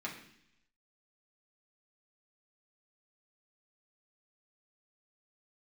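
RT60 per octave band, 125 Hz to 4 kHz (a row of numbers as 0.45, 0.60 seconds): 0.95, 0.90, 0.70, 0.70, 0.95, 0.95 seconds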